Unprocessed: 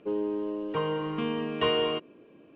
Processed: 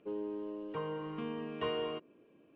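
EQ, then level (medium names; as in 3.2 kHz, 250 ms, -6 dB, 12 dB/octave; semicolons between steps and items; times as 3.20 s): dynamic bell 3.1 kHz, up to -5 dB, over -46 dBFS, Q 1.3; -9.0 dB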